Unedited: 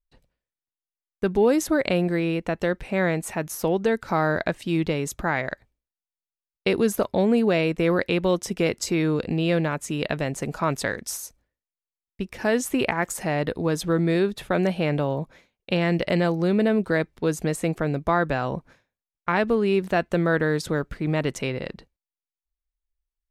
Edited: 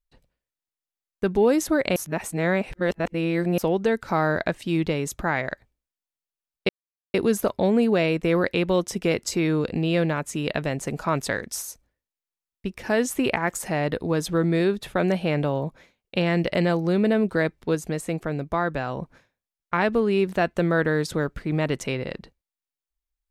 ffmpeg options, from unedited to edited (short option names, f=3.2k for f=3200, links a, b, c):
-filter_complex "[0:a]asplit=6[a][b][c][d][e][f];[a]atrim=end=1.962[g];[b]atrim=start=1.958:end=3.582,asetpts=PTS-STARTPTS,areverse[h];[c]atrim=start=3.578:end=6.69,asetpts=PTS-STARTPTS,afade=t=out:st=3.108:d=0.004:c=hsin,apad=pad_dur=0.45[i];[d]atrim=start=6.69:end=17.302,asetpts=PTS-STARTPTS,afade=t=in:d=0.004:c=hsin[j];[e]atrim=start=17.298:end=18.572,asetpts=PTS-STARTPTS,volume=-3dB[k];[f]atrim=start=18.568[l];[g][h]acrossfade=d=0.004:c1=hsin:c2=hsin[m];[i][j]concat=n=2:v=0:a=1[n];[m][n]acrossfade=d=0.004:c1=hsin:c2=hsin[o];[o][k]acrossfade=d=0.004:c1=hsin:c2=hsin[p];[p][l]acrossfade=d=0.004:c1=hsin:c2=hsin"